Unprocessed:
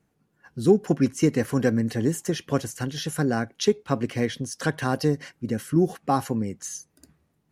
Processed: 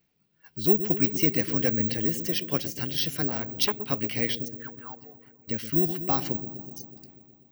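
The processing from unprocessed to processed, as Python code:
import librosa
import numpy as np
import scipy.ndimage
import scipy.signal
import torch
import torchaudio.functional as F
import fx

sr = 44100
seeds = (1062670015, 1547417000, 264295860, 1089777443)

y = fx.auto_wah(x, sr, base_hz=690.0, top_hz=2400.0, q=13.0, full_db=-18.0, direction='down', at=(4.47, 5.47), fade=0.02)
y = fx.band_shelf(y, sr, hz=3400.0, db=11.0, octaves=1.7)
y = fx.gate_flip(y, sr, shuts_db=-27.0, range_db=-31, at=(6.36, 6.76), fade=0.02)
y = fx.echo_wet_lowpass(y, sr, ms=123, feedback_pct=73, hz=430.0, wet_db=-9.0)
y = (np.kron(scipy.signal.resample_poly(y, 1, 2), np.eye(2)[0]) * 2)[:len(y)]
y = fx.transformer_sat(y, sr, knee_hz=3300.0, at=(3.28, 3.9))
y = y * librosa.db_to_amplitude(-6.5)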